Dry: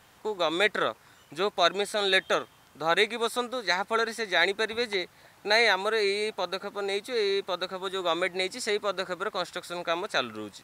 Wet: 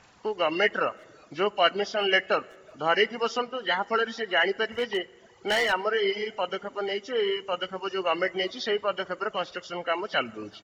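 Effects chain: nonlinear frequency compression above 1700 Hz 1.5:1; 4.77–5.73 hard clip -22 dBFS, distortion -18 dB; speakerphone echo 0.37 s, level -22 dB; on a send at -10.5 dB: reverb RT60 1.6 s, pre-delay 3 ms; on the sum: reverb removal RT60 1.1 s; gain +2 dB

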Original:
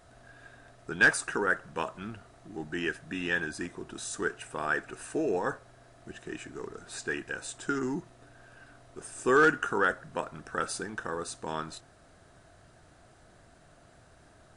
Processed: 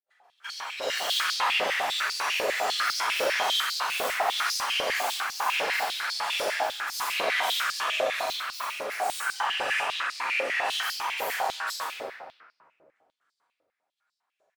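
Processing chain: random spectral dropouts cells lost 38%; gate -52 dBFS, range -47 dB; AGC gain up to 12 dB; limiter -32 dBFS, peak gain reduction 29.5 dB; grains; full-wave rectifier; echoes that change speed 0.158 s, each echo +5 st, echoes 3; doubler 43 ms -6 dB; reverb RT60 1.9 s, pre-delay 4 ms, DRR -13 dB; stepped high-pass 10 Hz 540–4800 Hz; gain +1 dB

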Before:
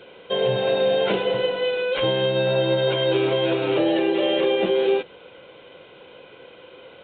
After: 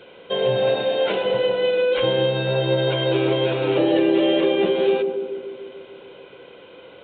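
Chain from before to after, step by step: 0.82–1.24 low shelf 280 Hz -9.5 dB; narrowing echo 0.146 s, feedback 71%, band-pass 310 Hz, level -4 dB

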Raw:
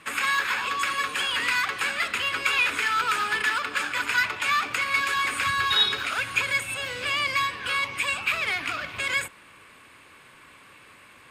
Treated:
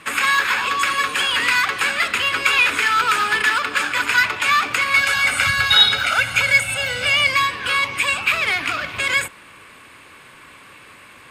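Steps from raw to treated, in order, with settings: 4.96–7.29 comb 1.4 ms, depth 68%; gain +7 dB

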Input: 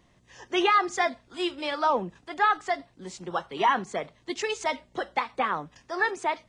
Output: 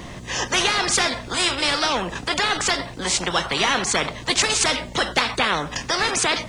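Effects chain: spectral compressor 4:1; gain +5.5 dB

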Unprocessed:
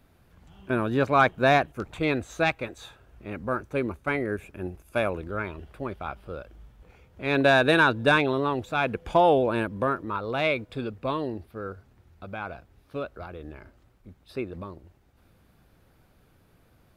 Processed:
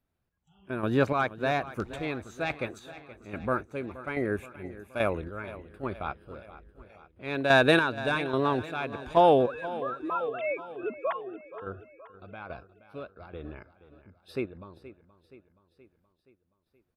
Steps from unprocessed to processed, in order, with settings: 9.47–11.62 sine-wave speech; spectral noise reduction 21 dB; chopper 1.2 Hz, depth 60%, duty 35%; feedback echo 0.474 s, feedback 56%, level -16 dB

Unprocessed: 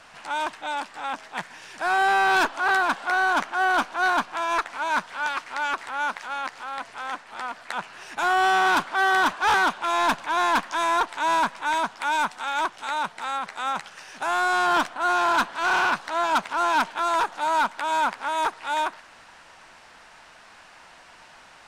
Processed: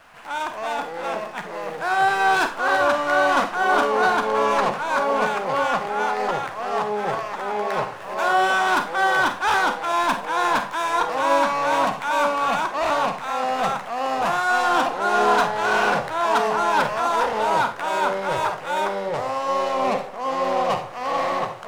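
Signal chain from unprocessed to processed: median filter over 9 samples; Schroeder reverb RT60 0.3 s, combs from 31 ms, DRR 7 dB; echoes that change speed 0.166 s, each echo -5 st, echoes 2

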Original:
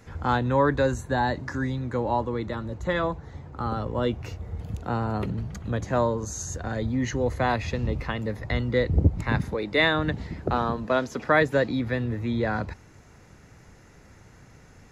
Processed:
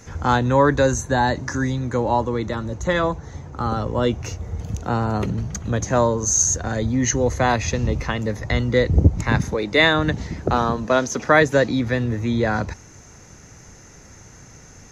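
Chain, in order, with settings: bell 6200 Hz +14.5 dB 0.38 oct; gain +5.5 dB

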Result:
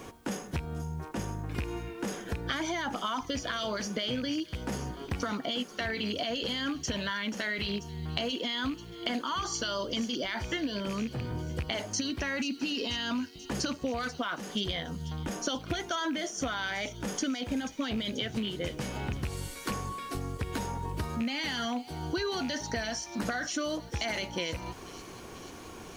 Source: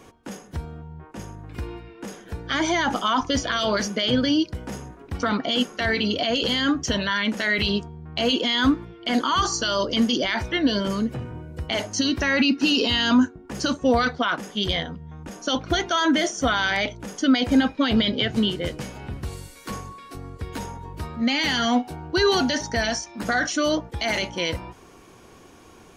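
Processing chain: rattling part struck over -25 dBFS, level -22 dBFS; compressor 12:1, threshold -33 dBFS, peak gain reduction 20 dB; on a send: thin delay 0.486 s, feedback 67%, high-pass 4500 Hz, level -11 dB; on the sum: added noise white -72 dBFS; gain +3.5 dB

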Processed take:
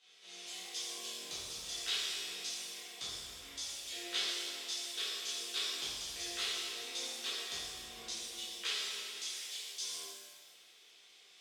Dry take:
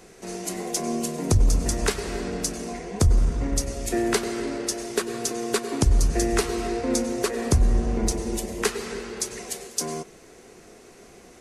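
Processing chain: band-pass 3400 Hz, Q 6; shimmer reverb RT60 1.3 s, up +7 st, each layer -8 dB, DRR -10.5 dB; gain -4.5 dB

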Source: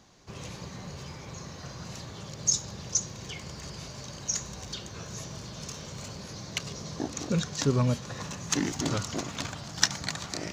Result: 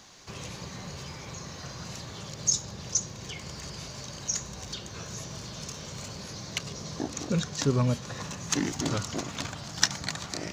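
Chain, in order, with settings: mismatched tape noise reduction encoder only

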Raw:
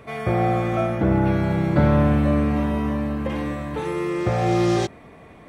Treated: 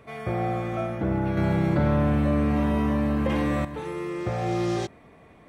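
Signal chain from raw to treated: 1.37–3.65 fast leveller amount 70%; gain -6.5 dB

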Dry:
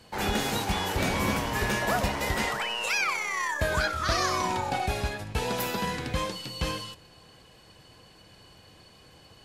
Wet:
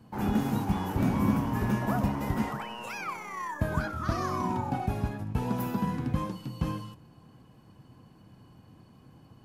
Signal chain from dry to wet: graphic EQ 125/250/500/1000/2000/4000/8000 Hz +9/+11/-5/+4/-6/-10/-8 dB; gain -5 dB

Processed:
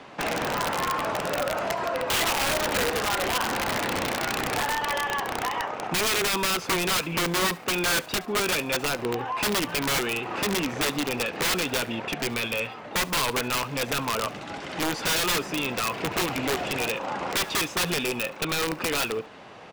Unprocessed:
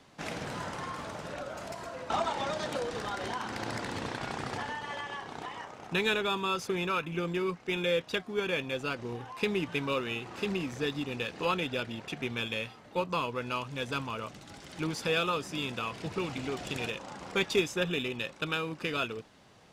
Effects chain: bell 2600 Hz +4 dB 0.39 oct; in parallel at +2.5 dB: compressor 6:1, threshold -38 dBFS, peak gain reduction 16 dB; on the sum: overdrive pedal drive 17 dB, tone 1000 Hz, clips at -12 dBFS; wrapped overs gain 20.5 dB; feedback echo 70 ms, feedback 37%, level -22 dB; gain +1 dB

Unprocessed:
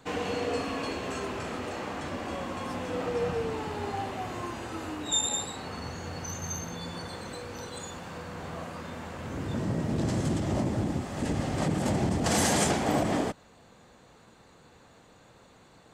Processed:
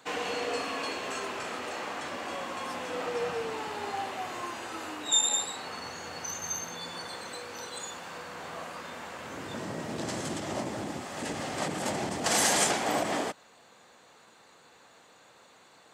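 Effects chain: HPF 770 Hz 6 dB/oct; gain +3 dB

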